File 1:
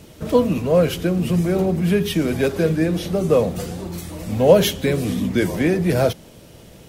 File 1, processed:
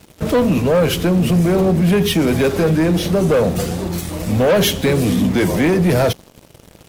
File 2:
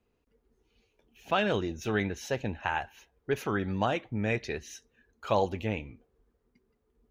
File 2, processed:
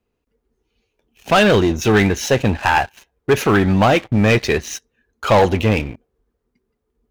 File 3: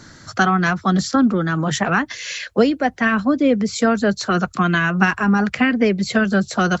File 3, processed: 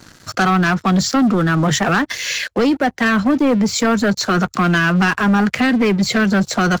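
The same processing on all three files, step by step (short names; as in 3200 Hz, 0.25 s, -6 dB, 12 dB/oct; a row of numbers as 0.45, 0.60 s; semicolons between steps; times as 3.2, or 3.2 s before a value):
sample leveller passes 3; limiter -5.5 dBFS; match loudness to -16 LUFS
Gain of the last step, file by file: -4.0, +7.0, -4.5 dB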